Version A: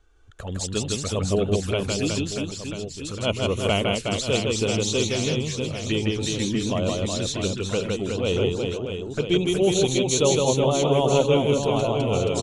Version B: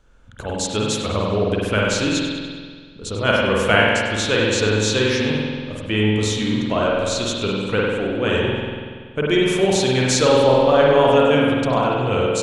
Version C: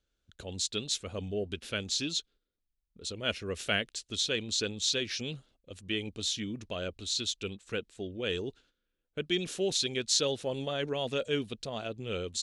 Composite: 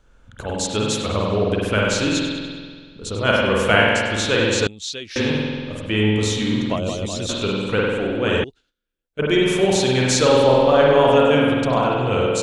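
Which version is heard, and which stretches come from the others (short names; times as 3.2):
B
4.67–5.16 from C
6.76–7.29 from A
8.44–9.19 from C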